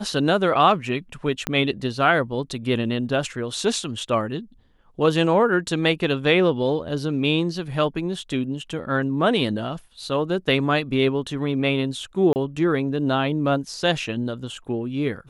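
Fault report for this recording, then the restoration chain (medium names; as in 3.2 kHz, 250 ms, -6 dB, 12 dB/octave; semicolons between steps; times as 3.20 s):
1.47 s: pop -8 dBFS
12.33–12.36 s: dropout 29 ms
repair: de-click; interpolate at 12.33 s, 29 ms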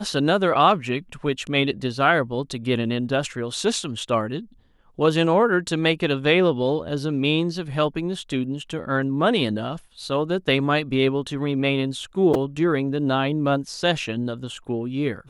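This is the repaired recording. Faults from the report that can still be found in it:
1.47 s: pop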